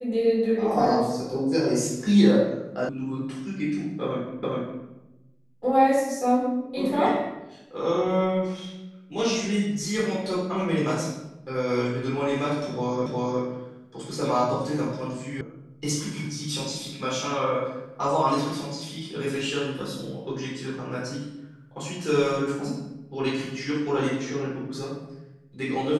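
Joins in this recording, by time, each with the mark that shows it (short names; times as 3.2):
2.89 sound cut off
4.43 repeat of the last 0.41 s
13.06 repeat of the last 0.36 s
15.41 sound cut off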